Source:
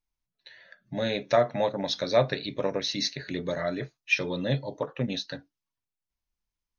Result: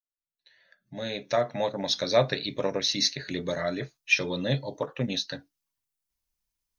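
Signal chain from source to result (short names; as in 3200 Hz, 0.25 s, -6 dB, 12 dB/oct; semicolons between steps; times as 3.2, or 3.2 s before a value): opening faded in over 2.07 s; high shelf 5200 Hz +10.5 dB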